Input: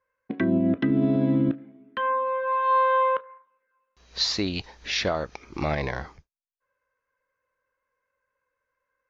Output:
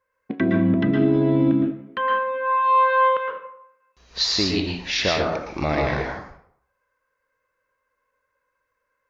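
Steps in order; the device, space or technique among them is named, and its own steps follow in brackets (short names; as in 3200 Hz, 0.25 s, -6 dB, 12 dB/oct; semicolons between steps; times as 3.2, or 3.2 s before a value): bathroom (reverb RT60 0.70 s, pre-delay 0.11 s, DRR 0 dB); gain +2.5 dB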